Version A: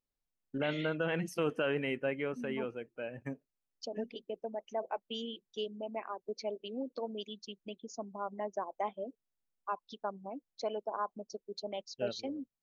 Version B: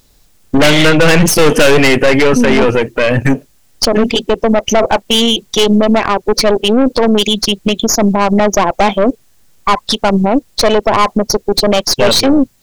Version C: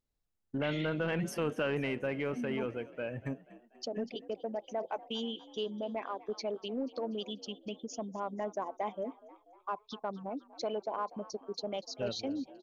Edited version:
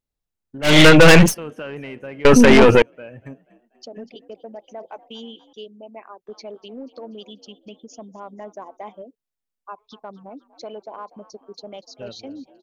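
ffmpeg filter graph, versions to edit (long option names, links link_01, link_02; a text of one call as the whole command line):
ffmpeg -i take0.wav -i take1.wav -i take2.wav -filter_complex "[1:a]asplit=2[link_01][link_02];[0:a]asplit=2[link_03][link_04];[2:a]asplit=5[link_05][link_06][link_07][link_08][link_09];[link_05]atrim=end=0.78[link_10];[link_01]atrim=start=0.62:end=1.35[link_11];[link_06]atrim=start=1.19:end=2.252[link_12];[link_02]atrim=start=2.248:end=2.822[link_13];[link_07]atrim=start=2.818:end=5.532[link_14];[link_03]atrim=start=5.528:end=6.272[link_15];[link_08]atrim=start=6.268:end=9.022[link_16];[link_04]atrim=start=9.018:end=9.782[link_17];[link_09]atrim=start=9.778[link_18];[link_10][link_11]acrossfade=duration=0.16:curve1=tri:curve2=tri[link_19];[link_19][link_12]acrossfade=duration=0.16:curve1=tri:curve2=tri[link_20];[link_20][link_13]acrossfade=duration=0.004:curve1=hsin:curve2=hsin[link_21];[link_21][link_14]acrossfade=duration=0.004:curve1=hsin:curve2=hsin[link_22];[link_22][link_15]acrossfade=duration=0.004:curve1=hsin:curve2=hsin[link_23];[link_23][link_16]acrossfade=duration=0.004:curve1=hsin:curve2=hsin[link_24];[link_24][link_17]acrossfade=duration=0.004:curve1=hsin:curve2=hsin[link_25];[link_25][link_18]acrossfade=duration=0.004:curve1=hsin:curve2=hsin" out.wav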